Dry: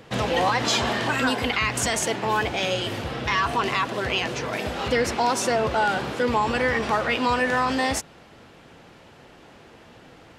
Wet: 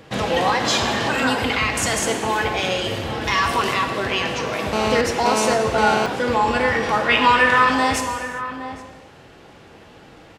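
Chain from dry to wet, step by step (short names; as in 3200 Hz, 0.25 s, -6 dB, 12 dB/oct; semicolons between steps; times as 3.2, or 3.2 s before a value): 3.21–3.74 high shelf 6500 Hz +11.5 dB; 7.09–7.7 spectral gain 880–3800 Hz +7 dB; outdoor echo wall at 140 m, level -11 dB; non-linear reverb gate 0.43 s falling, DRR 4 dB; 4.73–6.06 GSM buzz -23 dBFS; gain +1.5 dB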